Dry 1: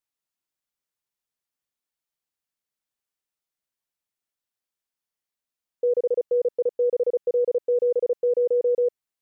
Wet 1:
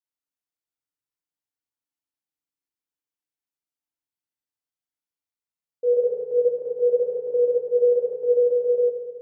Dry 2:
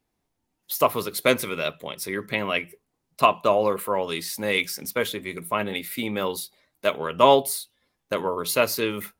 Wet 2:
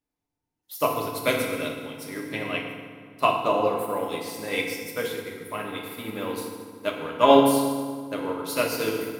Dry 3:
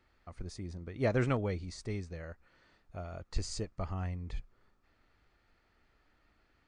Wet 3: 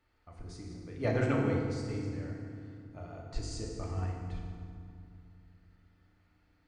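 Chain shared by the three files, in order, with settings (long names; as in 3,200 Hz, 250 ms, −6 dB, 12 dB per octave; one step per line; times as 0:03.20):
feedback delay network reverb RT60 2.4 s, low-frequency decay 1.55×, high-frequency decay 0.65×, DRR −2.5 dB
expander for the loud parts 1.5 to 1, over −30 dBFS
level −2.5 dB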